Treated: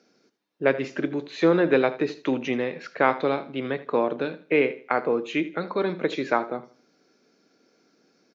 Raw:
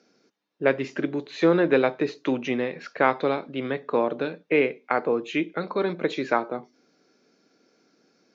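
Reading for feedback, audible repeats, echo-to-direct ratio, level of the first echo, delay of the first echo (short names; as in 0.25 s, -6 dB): 29%, 2, -16.0 dB, -16.5 dB, 80 ms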